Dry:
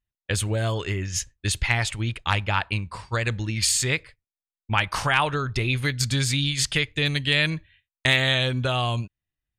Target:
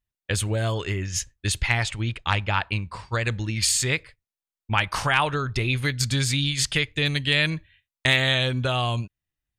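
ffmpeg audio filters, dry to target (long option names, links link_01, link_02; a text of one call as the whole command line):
ffmpeg -i in.wav -filter_complex "[0:a]asettb=1/sr,asplit=3[link_01][link_02][link_03];[link_01]atrim=end=1.834[link_04];[link_02]atrim=start=1.83:end=3.24,asetpts=PTS-STARTPTS,afade=type=in:duration=0.004:curve=qsin,afade=type=out:start_time=1.406:duration=0.004:curve=qsin,equalizer=frequency=12000:width_type=o:width=0.68:gain=-10[link_05];[link_03]atrim=start=3.236[link_06];[link_04][link_05]acrossfade=duration=0.004:curve1=hsin:curve2=qsin[link_07];[link_07][link_06]acrossfade=duration=0.004:curve1=qsin:curve2=hsin" out.wav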